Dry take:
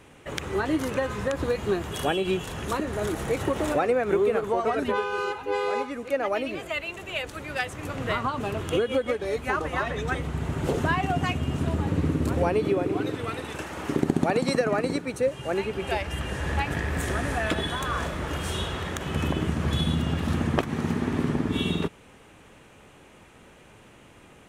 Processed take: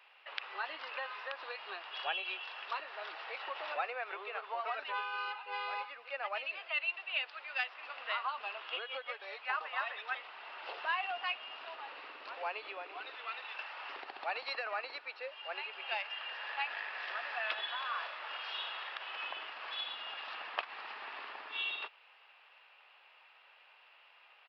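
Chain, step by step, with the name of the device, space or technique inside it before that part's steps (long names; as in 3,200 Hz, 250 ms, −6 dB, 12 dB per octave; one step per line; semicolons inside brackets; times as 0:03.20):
musical greeting card (downsampling to 11,025 Hz; high-pass filter 760 Hz 24 dB per octave; parametric band 2,700 Hz +8.5 dB 0.21 octaves)
level −7.5 dB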